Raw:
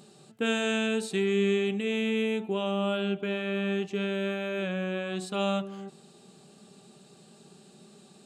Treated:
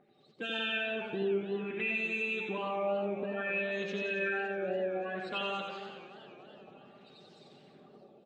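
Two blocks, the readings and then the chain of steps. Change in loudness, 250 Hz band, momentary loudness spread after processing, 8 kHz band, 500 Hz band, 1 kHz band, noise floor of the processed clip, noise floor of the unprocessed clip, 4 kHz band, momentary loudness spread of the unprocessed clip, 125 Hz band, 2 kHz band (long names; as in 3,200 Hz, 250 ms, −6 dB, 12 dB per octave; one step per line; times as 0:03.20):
−4.5 dB, −10.5 dB, 14 LU, below −15 dB, −5.0 dB, −1.5 dB, −61 dBFS, −56 dBFS, −5.0 dB, 6 LU, −11.0 dB, 0.0 dB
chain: spectral magnitudes quantised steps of 30 dB
low-shelf EQ 480 Hz −4.5 dB
harmonic and percussive parts rebalanced harmonic −6 dB
high-shelf EQ 7,000 Hz −9.5 dB
automatic gain control gain up to 8.5 dB
brickwall limiter −21.5 dBFS, peak gain reduction 6 dB
auto-filter low-pass sine 0.58 Hz 590–4,900 Hz
on a send: repeating echo 89 ms, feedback 53%, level −4.5 dB
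on the sum: feedback echo with a swinging delay time 283 ms, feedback 66%, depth 142 cents, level −16 dB
level −6.5 dB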